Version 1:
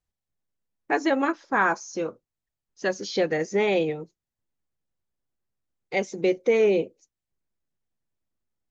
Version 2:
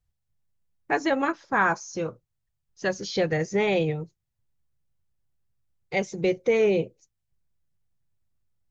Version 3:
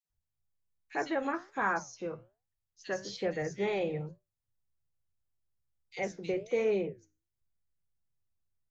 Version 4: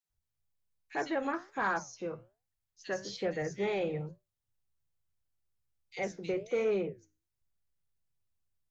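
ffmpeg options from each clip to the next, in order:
-af "lowshelf=f=180:t=q:w=1.5:g=9.5"
-filter_complex "[0:a]flanger=delay=9.2:depth=8.5:regen=-74:speed=1.2:shape=sinusoidal,acrossover=split=160|2800[a][b][c];[b]adelay=50[d];[a]adelay=90[e];[e][d][c]amix=inputs=3:normalize=0,volume=-3.5dB"
-af "asoftclip=type=tanh:threshold=-21dB"

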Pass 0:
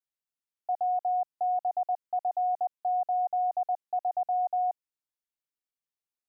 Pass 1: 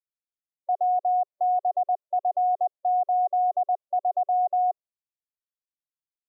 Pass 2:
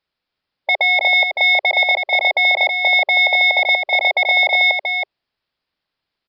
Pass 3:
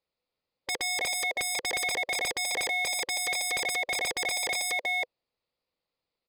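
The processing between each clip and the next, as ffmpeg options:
-af "afftdn=nr=21:nf=-49,tiltshelf=f=640:g=9.5,aecho=1:1:1.7:0.45,volume=4.5dB"
-af "aresample=11025,aeval=exprs='0.119*sin(PI/2*2.82*val(0)/0.119)':c=same,aresample=44100,aecho=1:1:322:0.531,volume=7.5dB"
-af "aresample=11025,aresample=44100,equalizer=f=500:t=o:w=0.33:g=10,equalizer=f=1.6k:t=o:w=0.33:g=-11,equalizer=f=3.15k:t=o:w=0.33:g=-6,aeval=exprs='0.119*(abs(mod(val(0)/0.119+3,4)-2)-1)':c=same,volume=-6.5dB"

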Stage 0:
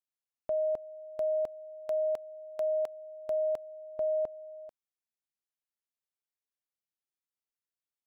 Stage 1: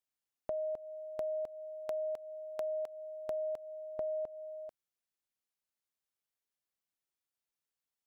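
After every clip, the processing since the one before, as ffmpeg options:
-af "acompressor=threshold=-36dB:ratio=6,volume=1dB"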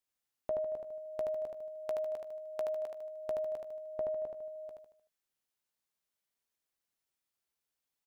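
-filter_complex "[0:a]asplit=2[a][b];[b]adelay=16,volume=-12.5dB[c];[a][c]amix=inputs=2:normalize=0,asplit=2[d][e];[e]aecho=0:1:76|152|228|304|380:0.631|0.271|0.117|0.0502|0.0216[f];[d][f]amix=inputs=2:normalize=0,volume=1dB"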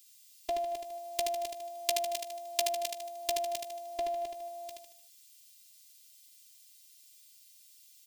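-af "afftfilt=real='hypot(re,im)*cos(PI*b)':imag='0':win_size=512:overlap=0.75,aexciter=amount=13:drive=7.8:freq=2.2k,volume=4.5dB"

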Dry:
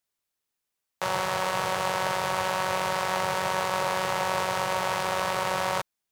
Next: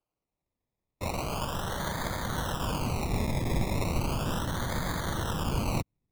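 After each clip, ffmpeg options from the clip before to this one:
-af "afftfilt=real='hypot(re,im)*cos(2*PI*random(0))':imag='hypot(re,im)*sin(2*PI*random(1))':win_size=512:overlap=0.75,acrusher=samples=23:mix=1:aa=0.000001:lfo=1:lforange=13.8:lforate=0.36,asubboost=boost=6.5:cutoff=220"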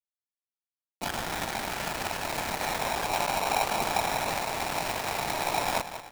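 -filter_complex "[0:a]aeval=exprs='val(0)*gte(abs(val(0)),0.02)':c=same,asplit=2[a][b];[b]adelay=189,lowpass=f=4.7k:p=1,volume=-11.5dB,asplit=2[c][d];[d]adelay=189,lowpass=f=4.7k:p=1,volume=0.52,asplit=2[e][f];[f]adelay=189,lowpass=f=4.7k:p=1,volume=0.52,asplit=2[g][h];[h]adelay=189,lowpass=f=4.7k:p=1,volume=0.52,asplit=2[i][j];[j]adelay=189,lowpass=f=4.7k:p=1,volume=0.52,asplit=2[k][l];[l]adelay=189,lowpass=f=4.7k:p=1,volume=0.52[m];[a][c][e][g][i][k][m]amix=inputs=7:normalize=0,aeval=exprs='val(0)*sgn(sin(2*PI*790*n/s))':c=same"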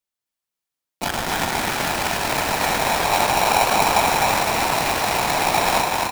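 -filter_complex "[0:a]asplit=8[a][b][c][d][e][f][g][h];[b]adelay=256,afreqshift=43,volume=-3dB[i];[c]adelay=512,afreqshift=86,volume=-8.7dB[j];[d]adelay=768,afreqshift=129,volume=-14.4dB[k];[e]adelay=1024,afreqshift=172,volume=-20dB[l];[f]adelay=1280,afreqshift=215,volume=-25.7dB[m];[g]adelay=1536,afreqshift=258,volume=-31.4dB[n];[h]adelay=1792,afreqshift=301,volume=-37.1dB[o];[a][i][j][k][l][m][n][o]amix=inputs=8:normalize=0,volume=8dB"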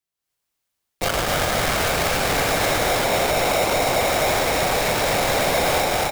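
-af "dynaudnorm=f=160:g=3:m=8dB,asoftclip=type=tanh:threshold=-15dB,afreqshift=-180,volume=-1dB"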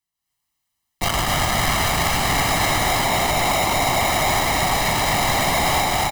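-af "aecho=1:1:1:0.68"

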